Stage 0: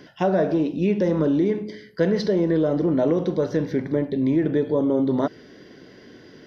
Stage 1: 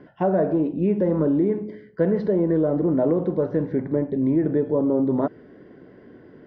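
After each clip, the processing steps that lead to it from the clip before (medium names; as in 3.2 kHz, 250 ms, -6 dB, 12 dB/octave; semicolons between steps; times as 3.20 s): low-pass 1.3 kHz 12 dB/octave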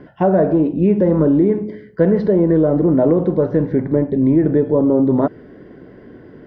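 bass shelf 76 Hz +9.5 dB; trim +6 dB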